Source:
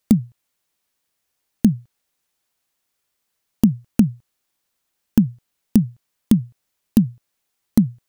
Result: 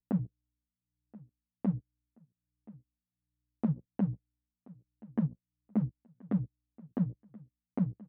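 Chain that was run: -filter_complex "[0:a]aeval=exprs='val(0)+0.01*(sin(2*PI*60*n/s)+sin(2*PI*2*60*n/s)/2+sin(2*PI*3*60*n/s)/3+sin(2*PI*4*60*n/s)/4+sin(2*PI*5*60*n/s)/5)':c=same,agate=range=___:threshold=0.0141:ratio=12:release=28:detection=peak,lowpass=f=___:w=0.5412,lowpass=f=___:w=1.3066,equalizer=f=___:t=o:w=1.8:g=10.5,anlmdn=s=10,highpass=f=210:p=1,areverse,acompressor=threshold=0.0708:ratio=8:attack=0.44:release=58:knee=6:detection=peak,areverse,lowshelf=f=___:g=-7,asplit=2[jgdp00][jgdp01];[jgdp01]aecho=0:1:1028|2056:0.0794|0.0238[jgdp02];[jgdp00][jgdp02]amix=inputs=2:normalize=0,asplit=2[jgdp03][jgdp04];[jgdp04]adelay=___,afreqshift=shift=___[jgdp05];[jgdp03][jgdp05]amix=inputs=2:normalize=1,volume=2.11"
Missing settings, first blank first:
0.0708, 1900, 1900, 550, 430, 8.9, 1.3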